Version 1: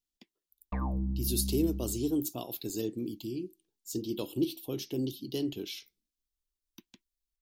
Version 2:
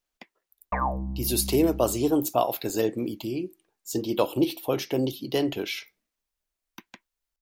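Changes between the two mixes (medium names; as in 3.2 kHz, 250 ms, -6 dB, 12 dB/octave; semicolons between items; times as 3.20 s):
speech +5.5 dB; master: add high-order bell 1.1 kHz +14.5 dB 2.5 oct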